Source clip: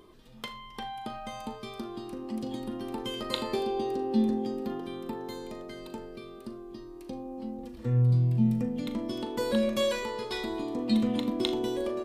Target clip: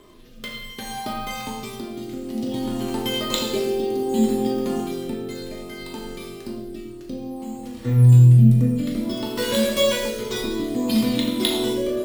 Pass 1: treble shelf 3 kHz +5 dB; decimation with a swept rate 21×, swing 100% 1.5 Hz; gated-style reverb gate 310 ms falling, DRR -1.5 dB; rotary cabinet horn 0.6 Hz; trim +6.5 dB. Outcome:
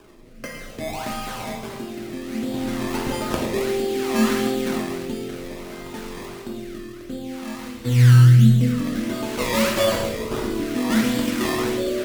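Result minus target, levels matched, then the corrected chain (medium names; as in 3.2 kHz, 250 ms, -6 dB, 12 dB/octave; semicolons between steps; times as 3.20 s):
decimation with a swept rate: distortion +10 dB
treble shelf 3 kHz +5 dB; decimation with a swept rate 4×, swing 100% 1.5 Hz; gated-style reverb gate 310 ms falling, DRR -1.5 dB; rotary cabinet horn 0.6 Hz; trim +6.5 dB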